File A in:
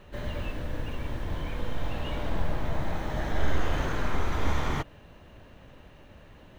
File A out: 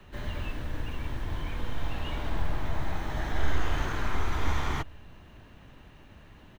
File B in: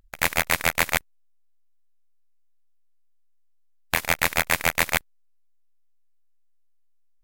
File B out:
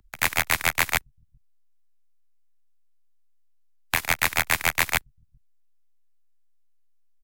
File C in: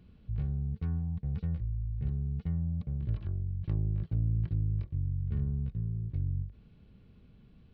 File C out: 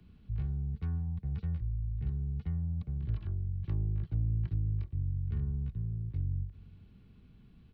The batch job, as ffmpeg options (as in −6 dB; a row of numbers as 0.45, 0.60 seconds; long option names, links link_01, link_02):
-filter_complex "[0:a]equalizer=frequency=540:width_type=o:width=0.54:gain=-7.5,acrossover=split=140|260|580[link_01][link_02][link_03][link_04];[link_01]aecho=1:1:395:0.0794[link_05];[link_02]acompressor=threshold=-50dB:ratio=6[link_06];[link_05][link_06][link_03][link_04]amix=inputs=4:normalize=0"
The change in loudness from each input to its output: −1.0, −0.5, −1.5 LU